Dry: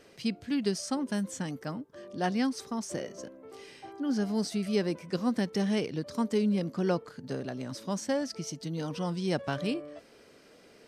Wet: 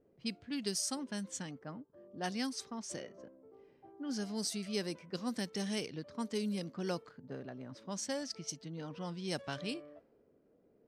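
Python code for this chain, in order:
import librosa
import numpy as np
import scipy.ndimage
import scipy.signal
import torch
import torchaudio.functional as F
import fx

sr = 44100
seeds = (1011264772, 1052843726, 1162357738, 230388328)

y = librosa.effects.preemphasis(x, coef=0.8, zi=[0.0])
y = fx.env_lowpass(y, sr, base_hz=420.0, full_db=-37.0)
y = y * 10.0 ** (4.5 / 20.0)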